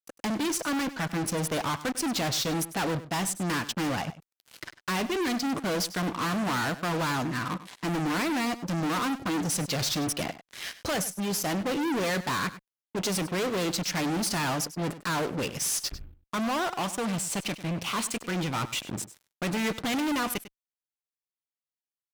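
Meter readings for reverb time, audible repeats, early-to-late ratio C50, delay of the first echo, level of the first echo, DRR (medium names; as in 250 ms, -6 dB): no reverb, 1, no reverb, 99 ms, -15.0 dB, no reverb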